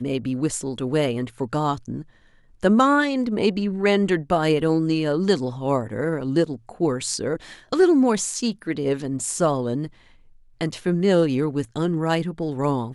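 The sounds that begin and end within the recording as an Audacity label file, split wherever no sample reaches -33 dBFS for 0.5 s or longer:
2.630000	9.870000	sound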